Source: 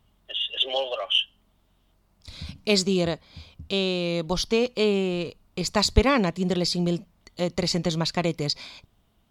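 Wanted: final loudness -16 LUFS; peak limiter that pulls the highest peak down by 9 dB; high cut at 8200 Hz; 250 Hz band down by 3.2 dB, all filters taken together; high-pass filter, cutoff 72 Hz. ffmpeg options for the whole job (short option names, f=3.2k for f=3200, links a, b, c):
-af "highpass=72,lowpass=8.2k,equalizer=f=250:t=o:g=-5,volume=12.5dB,alimiter=limit=-4.5dB:level=0:latency=1"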